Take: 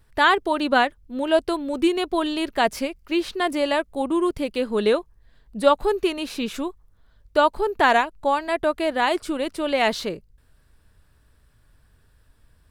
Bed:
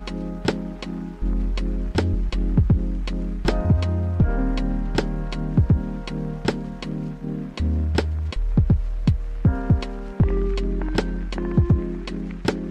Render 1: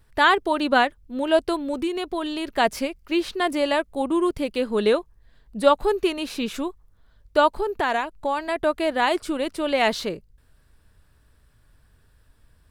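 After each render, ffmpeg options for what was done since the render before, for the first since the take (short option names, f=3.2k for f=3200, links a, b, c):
-filter_complex "[0:a]asettb=1/sr,asplit=3[a][b][c];[a]atrim=end=1.744[d];[b]atrim=start=1.74:end=2.47,asetpts=PTS-STARTPTS,afade=t=in:d=0.004:c=qsin,afade=t=out:st=0.726:d=0.004:c=qsin,acompressor=threshold=-26dB:ratio=2:attack=3.2:release=140:knee=1:detection=peak[e];[c]atrim=start=2.466[f];[d][e]acrossfade=d=0.004:c1=hsin:c2=qsin[g];[g][f]acrossfade=d=0.004:c1=qsin:c2=hsin,asettb=1/sr,asplit=3[h][i][j];[h]atrim=end=7.544[k];[i]atrim=start=7.54:end=8.56,asetpts=PTS-STARTPTS,afade=t=in:d=0.004:c=qsin,afade=t=out:st=1.016:d=0.004:c=qsin,acompressor=threshold=-20dB:ratio=3:attack=3.2:release=140:knee=1:detection=peak[l];[j]atrim=start=8.556[m];[k][l]acrossfade=d=0.004:c1=hsin:c2=qsin[n];[n][m]acrossfade=d=0.004:c1=qsin:c2=hsin"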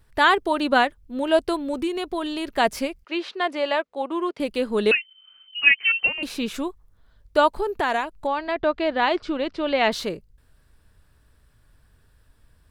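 -filter_complex "[0:a]asettb=1/sr,asplit=3[a][b][c];[a]atrim=end=3.044[d];[b]atrim=start=3.04:end=4.4,asetpts=PTS-STARTPTS,afade=t=in:d=0.004:c=qsin,afade=t=out:st=1.356:d=0.004:c=qsin,highpass=430,lowpass=4.2k[e];[c]atrim=start=4.396[f];[d][e]acrossfade=d=0.004:c1=hsin:c2=qsin[g];[g][f]acrossfade=d=0.004:c1=qsin:c2=hsin,asettb=1/sr,asplit=3[h][i][j];[h]atrim=end=4.914[k];[i]atrim=start=4.91:end=6.23,asetpts=PTS-STARTPTS,afade=t=in:d=0.004:c=qsin,afade=t=out:st=1.316:d=0.004:c=qsin,lowpass=f=2.6k:t=q:w=0.5098,lowpass=f=2.6k:t=q:w=0.6013,lowpass=f=2.6k:t=q:w=0.9,lowpass=f=2.6k:t=q:w=2.563,afreqshift=-3100[l];[j]atrim=start=6.226[m];[k][l]acrossfade=d=0.004:c1=hsin:c2=qsin[n];[n][m]acrossfade=d=0.004:c1=qsin:c2=hsin,asettb=1/sr,asplit=3[o][p][q];[o]atrim=end=8.274[r];[p]atrim=start=8.27:end=9.92,asetpts=PTS-STARTPTS,afade=t=in:d=0.004:c=qsin,afade=t=out:st=1.646:d=0.004:c=qsin,lowpass=f=5k:w=0.5412,lowpass=f=5k:w=1.3066[s];[q]atrim=start=9.916[t];[r][s]acrossfade=d=0.004:c1=hsin:c2=qsin[u];[u][t]acrossfade=d=0.004:c1=qsin:c2=hsin"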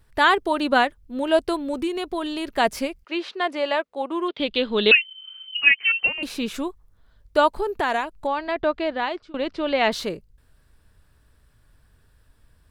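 -filter_complex "[0:a]asettb=1/sr,asplit=3[a][b][c];[a]atrim=end=4.284[d];[b]atrim=start=4.28:end=5.57,asetpts=PTS-STARTPTS,afade=t=in:d=0.004:c=qsin,afade=t=out:st=1.286:d=0.004:c=qsin,lowpass=f=3.5k:t=q:w=5.9[e];[c]atrim=start=5.566[f];[d][e]acrossfade=d=0.004:c1=hsin:c2=qsin[g];[g][f]acrossfade=d=0.004:c1=qsin:c2=hsin,asplit=2[h][i];[h]atrim=end=9.34,asetpts=PTS-STARTPTS,afade=t=out:st=8.53:d=0.81:c=qsin:silence=0.0630957[j];[i]atrim=start=9.34,asetpts=PTS-STARTPTS,afade=t=in:d=0.004:c=hsin:silence=0.0630957[k];[j][k]concat=n=2:v=0:a=1"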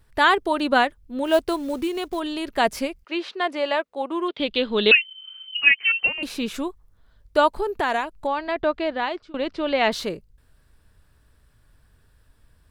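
-filter_complex "[0:a]asplit=3[a][b][c];[a]afade=t=out:st=1.24:d=0.02[d];[b]acrusher=bits=6:mode=log:mix=0:aa=0.000001,afade=t=in:st=1.24:d=0.02,afade=t=out:st=2.19:d=0.02[e];[c]afade=t=in:st=2.19:d=0.02[f];[d][e][f]amix=inputs=3:normalize=0"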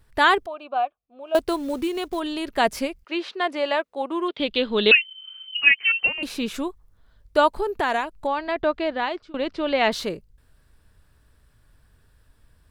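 -filter_complex "[0:a]asettb=1/sr,asplit=3[a][b][c];[a]atrim=end=0.464[d];[b]atrim=start=0.46:end=1.35,asetpts=PTS-STARTPTS,afade=t=in:d=0.004:c=qsin,afade=t=out:st=0.886:d=0.004:c=qsin,asplit=3[e][f][g];[e]bandpass=f=730:t=q:w=8,volume=0dB[h];[f]bandpass=f=1.09k:t=q:w=8,volume=-6dB[i];[g]bandpass=f=2.44k:t=q:w=8,volume=-9dB[j];[h][i][j]amix=inputs=3:normalize=0[k];[c]atrim=start=1.346[l];[d][k]acrossfade=d=0.004:c1=hsin:c2=qsin[m];[m][l]acrossfade=d=0.004:c1=qsin:c2=hsin"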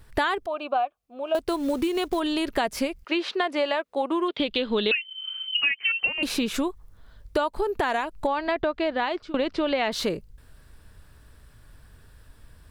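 -filter_complex "[0:a]asplit=2[a][b];[b]alimiter=limit=-13.5dB:level=0:latency=1:release=145,volume=2dB[c];[a][c]amix=inputs=2:normalize=0,acompressor=threshold=-22dB:ratio=6"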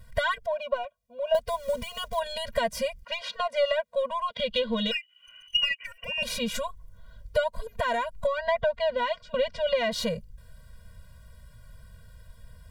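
-filter_complex "[0:a]asplit=2[a][b];[b]aeval=exprs='clip(val(0),-1,0.0335)':c=same,volume=-11.5dB[c];[a][c]amix=inputs=2:normalize=0,afftfilt=real='re*eq(mod(floor(b*sr/1024/230),2),0)':imag='im*eq(mod(floor(b*sr/1024/230),2),0)':win_size=1024:overlap=0.75"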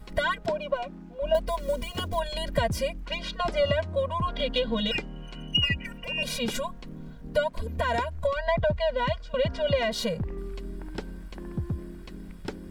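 -filter_complex "[1:a]volume=-13.5dB[a];[0:a][a]amix=inputs=2:normalize=0"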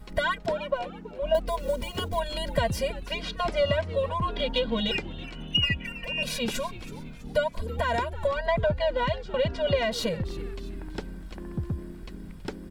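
-filter_complex "[0:a]asplit=5[a][b][c][d][e];[b]adelay=326,afreqshift=-120,volume=-16dB[f];[c]adelay=652,afreqshift=-240,volume=-22.6dB[g];[d]adelay=978,afreqshift=-360,volume=-29.1dB[h];[e]adelay=1304,afreqshift=-480,volume=-35.7dB[i];[a][f][g][h][i]amix=inputs=5:normalize=0"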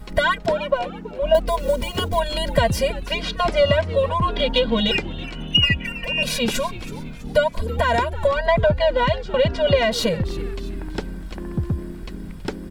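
-af "volume=7.5dB"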